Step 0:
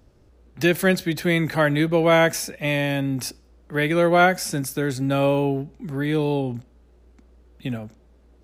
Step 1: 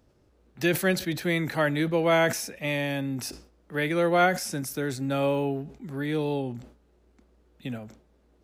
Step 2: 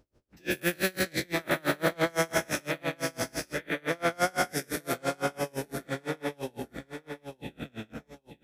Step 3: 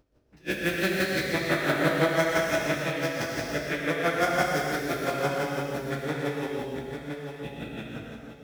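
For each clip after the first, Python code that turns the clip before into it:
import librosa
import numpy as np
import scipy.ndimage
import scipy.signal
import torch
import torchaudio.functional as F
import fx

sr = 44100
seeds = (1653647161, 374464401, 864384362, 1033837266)

y1 = fx.low_shelf(x, sr, hz=80.0, db=-9.0)
y1 = fx.sustainer(y1, sr, db_per_s=120.0)
y1 = y1 * librosa.db_to_amplitude(-5.0)
y2 = fx.spec_dilate(y1, sr, span_ms=480)
y2 = fx.echo_feedback(y2, sr, ms=895, feedback_pct=35, wet_db=-7)
y2 = y2 * 10.0 ** (-32 * (0.5 - 0.5 * np.cos(2.0 * np.pi * 5.9 * np.arange(len(y2)) / sr)) / 20.0)
y2 = y2 * librosa.db_to_amplitude(-5.5)
y3 = scipy.ndimage.median_filter(y2, 5, mode='constant')
y3 = y3 + 10.0 ** (-10.5 / 20.0) * np.pad(y3, (int(124 * sr / 1000.0), 0))[:len(y3)]
y3 = fx.rev_gated(y3, sr, seeds[0], gate_ms=380, shape='flat', drr_db=-1.5)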